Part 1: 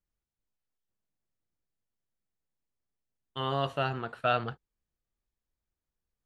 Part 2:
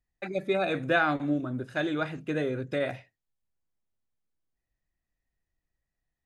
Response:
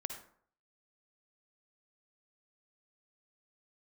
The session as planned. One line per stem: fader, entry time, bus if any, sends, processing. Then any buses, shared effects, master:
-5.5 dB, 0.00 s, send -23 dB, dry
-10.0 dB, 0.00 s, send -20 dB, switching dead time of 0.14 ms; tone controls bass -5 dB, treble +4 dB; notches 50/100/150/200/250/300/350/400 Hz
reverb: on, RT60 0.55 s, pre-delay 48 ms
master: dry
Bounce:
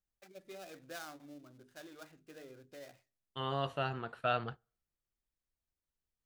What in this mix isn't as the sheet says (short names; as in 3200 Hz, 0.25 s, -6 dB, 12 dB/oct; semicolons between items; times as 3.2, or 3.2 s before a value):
stem 2 -10.0 dB -> -21.5 dB; reverb return -8.0 dB